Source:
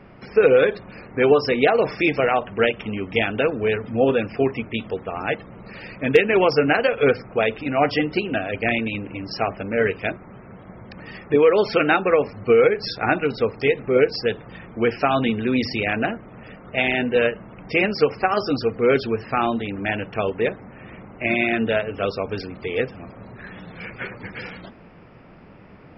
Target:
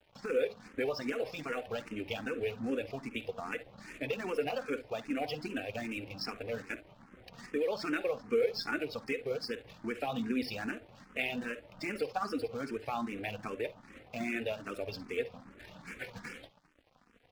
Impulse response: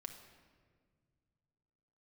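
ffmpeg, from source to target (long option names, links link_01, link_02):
-filter_complex "[0:a]acontrast=54,asplit=2[link_01][link_02];[link_02]adelay=105,lowpass=frequency=820:poles=1,volume=-16dB,asplit=2[link_03][link_04];[link_04]adelay=105,lowpass=frequency=820:poles=1,volume=0.31,asplit=2[link_05][link_06];[link_06]adelay=105,lowpass=frequency=820:poles=1,volume=0.31[link_07];[link_03][link_05][link_07]amix=inputs=3:normalize=0[link_08];[link_01][link_08]amix=inputs=2:normalize=0,acompressor=threshold=-22dB:ratio=2,aeval=exprs='sgn(val(0))*max(abs(val(0))-0.0141,0)':channel_layout=same,highshelf=frequency=3900:gain=6,flanger=delay=3.2:depth=1.1:regen=58:speed=0.68:shape=triangular,adynamicequalizer=threshold=0.00501:dfrequency=2000:dqfactor=6.3:tfrequency=2000:tqfactor=6.3:attack=5:release=100:ratio=0.375:range=2:mode=cutabove:tftype=bell,asplit=2[link_09][link_10];[link_10]aecho=0:1:86:0.178[link_11];[link_09][link_11]amix=inputs=2:normalize=0,atempo=1.5,asplit=2[link_12][link_13];[link_13]afreqshift=2.5[link_14];[link_12][link_14]amix=inputs=2:normalize=1,volume=-7dB"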